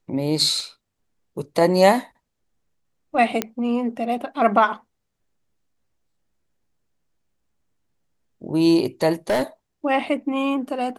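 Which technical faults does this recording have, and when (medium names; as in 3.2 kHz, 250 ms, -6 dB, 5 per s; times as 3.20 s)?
0.60 s: dropout 2.2 ms
3.42 s: pop -6 dBFS
9.30–9.43 s: clipped -16.5 dBFS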